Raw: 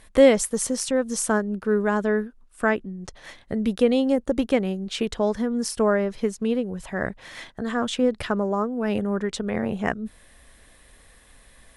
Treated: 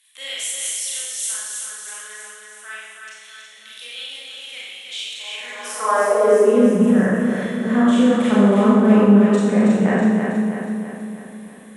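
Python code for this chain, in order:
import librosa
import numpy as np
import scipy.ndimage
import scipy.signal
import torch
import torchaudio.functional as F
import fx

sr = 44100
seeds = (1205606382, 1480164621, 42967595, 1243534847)

y = fx.peak_eq(x, sr, hz=4700.0, db=-11.5, octaves=0.73)
y = fx.echo_feedback(y, sr, ms=323, feedback_pct=54, wet_db=-5)
y = fx.rev_schroeder(y, sr, rt60_s=1.3, comb_ms=29, drr_db=-7.0)
y = fx.filter_sweep_highpass(y, sr, from_hz=3500.0, to_hz=190.0, start_s=5.17, end_s=6.87, q=2.4)
y = F.gain(torch.from_numpy(y), -3.0).numpy()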